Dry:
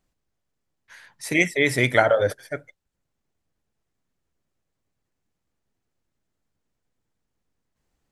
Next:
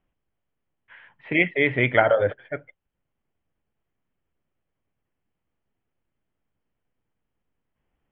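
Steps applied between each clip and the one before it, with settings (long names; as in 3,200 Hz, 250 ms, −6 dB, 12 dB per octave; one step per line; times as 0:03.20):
Chebyshev low-pass filter 3,200 Hz, order 6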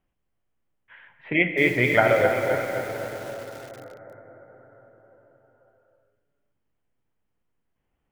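convolution reverb RT60 5.6 s, pre-delay 8 ms, DRR 5.5 dB
feedback echo at a low word length 262 ms, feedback 55%, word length 6 bits, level −7 dB
level −1 dB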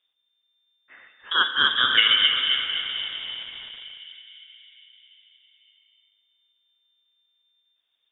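echo with a time of its own for lows and highs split 680 Hz, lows 368 ms, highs 199 ms, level −15 dB
voice inversion scrambler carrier 3,600 Hz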